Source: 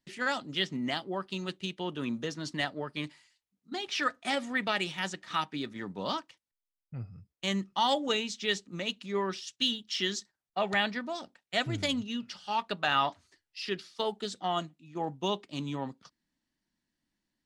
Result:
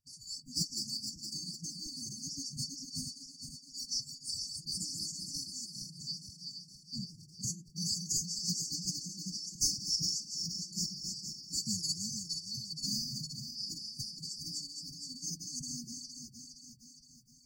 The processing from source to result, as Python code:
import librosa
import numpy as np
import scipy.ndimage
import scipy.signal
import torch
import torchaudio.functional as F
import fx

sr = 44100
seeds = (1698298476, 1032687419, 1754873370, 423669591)

y = fx.reverse_delay_fb(x, sr, ms=233, feedback_pct=72, wet_db=-5)
y = fx.brickwall_bandstop(y, sr, low_hz=170.0, high_hz=2600.0)
y = fx.pitch_keep_formants(y, sr, semitones=9.5)